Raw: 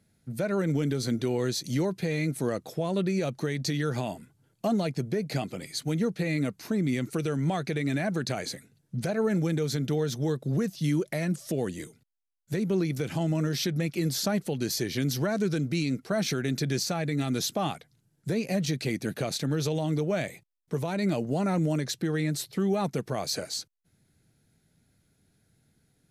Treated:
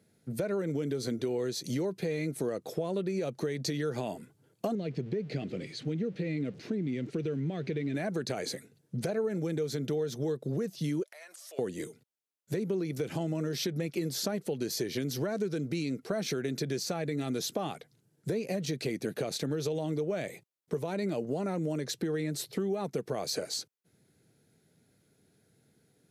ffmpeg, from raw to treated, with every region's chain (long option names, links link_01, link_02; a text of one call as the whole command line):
ffmpeg -i in.wav -filter_complex "[0:a]asettb=1/sr,asplit=3[link_01][link_02][link_03];[link_01]atrim=end=4.754[link_04];[link_02]atrim=start=4.75:end=7.95,asetpts=PTS-STARTPTS,afade=type=in:duration=0.004:curve=qsin,afade=type=out:start_time=3.196:duration=0.004:curve=qsin,aeval=exprs='val(0)+0.5*0.01*sgn(val(0))':channel_layout=same,lowpass=3000,equalizer=frequency=950:width=0.88:gain=-15[link_05];[link_03]atrim=start=7.946[link_06];[link_04][link_05]acrossfade=duration=0.004:curve1=hsin:curve2=qsin[link_07];[link_07][link_06]acrossfade=duration=0.004:curve1=qsin:curve2=hsin,asettb=1/sr,asplit=3[link_08][link_09][link_10];[link_08]atrim=end=11.034[link_11];[link_09]atrim=start=11.03:end=11.59,asetpts=PTS-STARTPTS,afade=type=in:duration=0.004:curve=qsin,afade=type=out:start_time=0.556:duration=0.004:curve=qsin,highpass=frequency=770:width=0.5412,highpass=frequency=770:width=1.3066,acompressor=threshold=-45dB:ratio=12:attack=3.2:release=140:knee=1:detection=peak[link_12];[link_10]atrim=start=11.586[link_13];[link_11][link_12]acrossfade=duration=0.004:curve1=hsin:curve2=qsin[link_14];[link_14][link_13]acrossfade=duration=0.004:curve1=qsin:curve2=hsin,highpass=110,equalizer=frequency=440:width=1.7:gain=7.5,acompressor=threshold=-30dB:ratio=4" out.wav